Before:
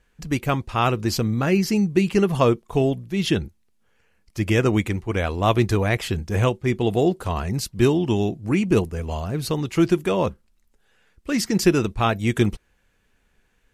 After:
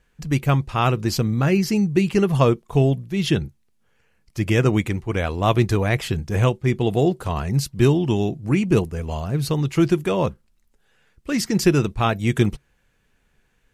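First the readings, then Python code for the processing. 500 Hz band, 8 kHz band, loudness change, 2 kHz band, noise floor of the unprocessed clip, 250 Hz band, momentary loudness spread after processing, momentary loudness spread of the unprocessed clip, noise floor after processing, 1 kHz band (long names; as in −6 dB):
0.0 dB, 0.0 dB, +1.0 dB, 0.0 dB, −65 dBFS, +0.5 dB, 7 LU, 7 LU, −65 dBFS, 0.0 dB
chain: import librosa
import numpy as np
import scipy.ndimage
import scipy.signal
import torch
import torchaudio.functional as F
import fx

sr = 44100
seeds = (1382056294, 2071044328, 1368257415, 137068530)

y = fx.peak_eq(x, sr, hz=140.0, db=8.5, octaves=0.27)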